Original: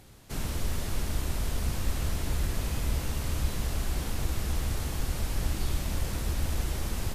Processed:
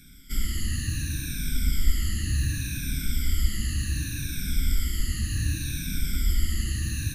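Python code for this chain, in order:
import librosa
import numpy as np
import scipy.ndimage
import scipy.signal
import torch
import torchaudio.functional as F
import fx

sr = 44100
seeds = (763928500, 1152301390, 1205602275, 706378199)

y = fx.spec_ripple(x, sr, per_octave=1.6, drift_hz=-0.67, depth_db=22)
y = scipy.signal.sosfilt(scipy.signal.ellip(3, 1.0, 80, [290.0, 1600.0], 'bandstop', fs=sr, output='sos'), y)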